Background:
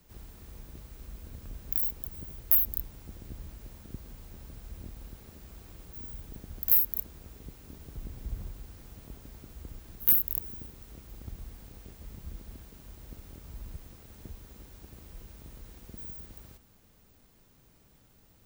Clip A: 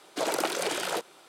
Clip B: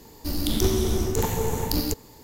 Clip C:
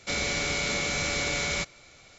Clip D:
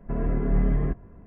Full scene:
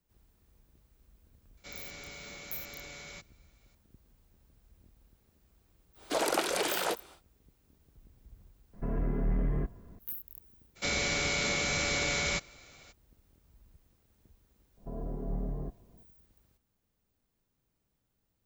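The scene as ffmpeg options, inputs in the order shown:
-filter_complex "[3:a]asplit=2[a][b];[4:a]asplit=2[c][d];[0:a]volume=-18dB[e];[c]asoftclip=type=tanh:threshold=-18dB[f];[d]lowpass=f=770:t=q:w=1.8[g];[a]atrim=end=2.18,asetpts=PTS-STARTPTS,volume=-18dB,afade=t=in:d=0.004:c=hsin,afade=t=out:st=2.176:d=0.004:c=hsin,adelay=1570[h];[1:a]atrim=end=1.28,asetpts=PTS-STARTPTS,volume=-1dB,afade=t=in:d=0.1,afade=t=out:st=1.18:d=0.1,adelay=5940[i];[f]atrim=end=1.26,asetpts=PTS-STARTPTS,volume=-4.5dB,afade=t=in:d=0.004:c=hsin,afade=t=out:st=1.256:d=0.004:c=hsin,adelay=8730[j];[b]atrim=end=2.18,asetpts=PTS-STARTPTS,volume=-2dB,afade=t=in:d=0.02,afade=t=out:st=2.16:d=0.02,adelay=10750[k];[g]atrim=end=1.26,asetpts=PTS-STARTPTS,volume=-13dB,afade=t=in:d=0.004:c=hsin,afade=t=out:st=1.256:d=0.004:c=hsin,adelay=14770[l];[e][h][i][j][k][l]amix=inputs=6:normalize=0"

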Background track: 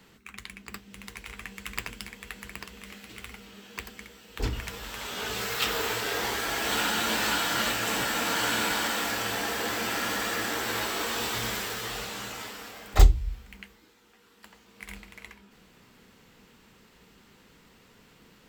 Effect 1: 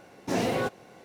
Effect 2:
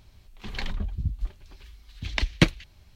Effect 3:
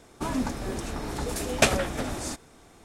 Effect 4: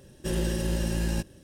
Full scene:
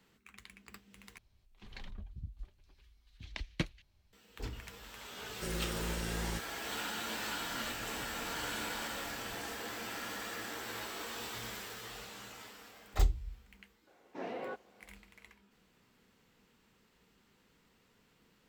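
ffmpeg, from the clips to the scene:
-filter_complex "[0:a]volume=-12dB[a];[4:a]equalizer=f=7.2k:w=1.5:g=7[b];[3:a]acompressor=threshold=-36dB:ratio=6:attack=3.2:release=140:knee=1:detection=peak[c];[1:a]highpass=310,lowpass=2.4k[d];[a]asplit=2[e][f];[e]atrim=end=1.184[g];[2:a]atrim=end=2.95,asetpts=PTS-STARTPTS,volume=-16dB[h];[f]atrim=start=4.126[i];[b]atrim=end=1.43,asetpts=PTS-STARTPTS,volume=-11dB,afade=t=in:d=0.004:c=hsin,afade=t=out:st=1.426:d=0.004:c=hsin,adelay=227997S[j];[c]atrim=end=2.84,asetpts=PTS-STARTPTS,volume=-11.5dB,afade=t=in:d=0.004:c=hsin,afade=t=out:st=2.836:d=0.004:c=hsin,adelay=7200[k];[d]atrim=end=1.04,asetpts=PTS-STARTPTS,volume=-12dB,afade=t=in:d=0.004:c=hsin,afade=t=out:st=1.036:d=0.004:c=hsin,adelay=13870[l];[g][h]acrossfade=d=0.004:c1=hsin:c2=hsin[m];[m][i]acrossfade=d=0.004:c1=hsin:c2=hsin[n];[n][j][k][l]amix=inputs=4:normalize=0"

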